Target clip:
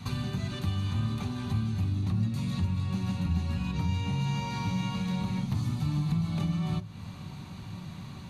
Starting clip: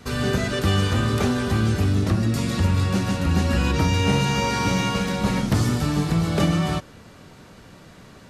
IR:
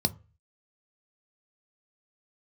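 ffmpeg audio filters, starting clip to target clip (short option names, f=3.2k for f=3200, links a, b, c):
-filter_complex "[0:a]acompressor=threshold=-34dB:ratio=5,asplit=2[a][b];[1:a]atrim=start_sample=2205[c];[b][c]afir=irnorm=-1:irlink=0,volume=-9dB[d];[a][d]amix=inputs=2:normalize=0,volume=-2.5dB"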